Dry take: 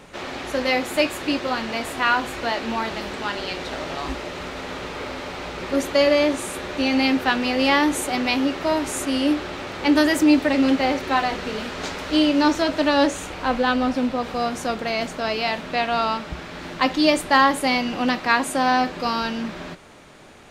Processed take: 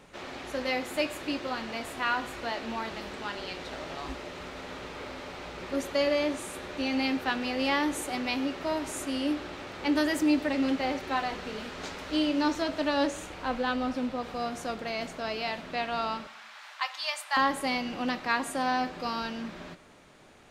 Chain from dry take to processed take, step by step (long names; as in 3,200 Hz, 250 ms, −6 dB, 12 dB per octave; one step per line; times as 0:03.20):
0:16.27–0:17.37: inverse Chebyshev high-pass filter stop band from 250 Hz, stop band 60 dB
convolution reverb RT60 0.80 s, pre-delay 45 ms, DRR 18 dB
level −9 dB